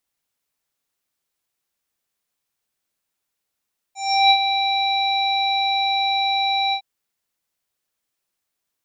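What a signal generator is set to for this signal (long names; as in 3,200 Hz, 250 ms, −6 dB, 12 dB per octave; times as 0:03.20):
subtractive voice square G5 24 dB per octave, low-pass 3,800 Hz, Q 5.1, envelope 1 octave, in 0.37 s, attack 353 ms, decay 0.07 s, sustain −8 dB, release 0.08 s, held 2.78 s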